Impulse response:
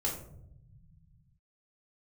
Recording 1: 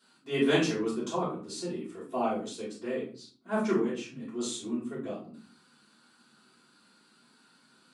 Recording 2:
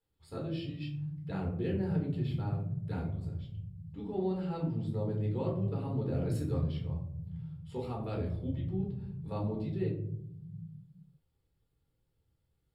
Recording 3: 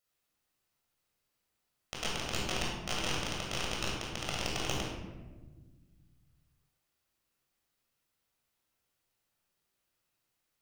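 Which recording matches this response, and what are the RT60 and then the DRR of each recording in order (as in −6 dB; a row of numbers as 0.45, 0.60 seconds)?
2; 0.45, 0.75, 1.4 seconds; −10.5, −3.0, −4.5 decibels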